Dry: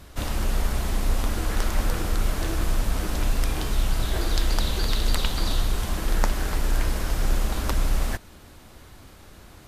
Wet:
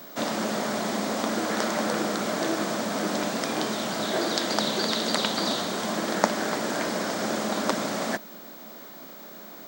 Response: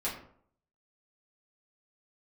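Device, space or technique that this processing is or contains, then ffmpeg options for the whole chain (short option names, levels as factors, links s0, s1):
old television with a line whistle: -af "highpass=f=200:w=0.5412,highpass=f=200:w=1.3066,equalizer=f=210:t=q:w=4:g=5,equalizer=f=620:t=q:w=4:g=6,equalizer=f=2700:t=q:w=4:g=-6,lowpass=f=8000:w=0.5412,lowpass=f=8000:w=1.3066,aeval=exprs='val(0)+0.00398*sin(2*PI*15734*n/s)':c=same,volume=1.68"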